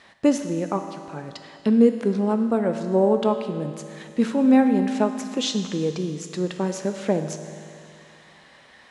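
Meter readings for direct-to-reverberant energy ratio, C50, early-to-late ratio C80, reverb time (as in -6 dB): 6.5 dB, 7.5 dB, 8.5 dB, 2.4 s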